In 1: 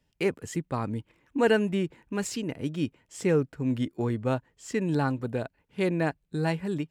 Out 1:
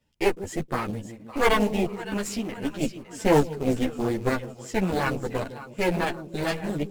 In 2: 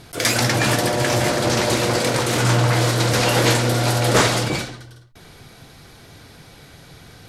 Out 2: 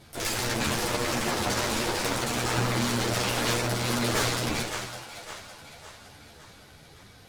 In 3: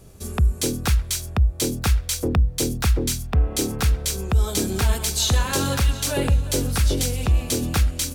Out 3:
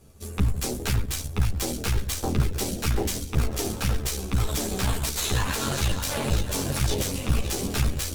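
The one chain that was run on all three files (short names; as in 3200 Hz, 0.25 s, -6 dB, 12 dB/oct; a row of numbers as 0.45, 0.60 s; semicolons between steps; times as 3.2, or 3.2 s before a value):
split-band echo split 560 Hz, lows 0.158 s, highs 0.559 s, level -11 dB; in parallel at -3.5 dB: short-mantissa float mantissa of 2-bit; on the sum: added harmonics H 6 -10 dB, 7 -26 dB, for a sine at 2.5 dBFS; limiter -6 dBFS; ensemble effect; match loudness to -27 LUFS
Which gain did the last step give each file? +3.0, -5.5, -3.5 dB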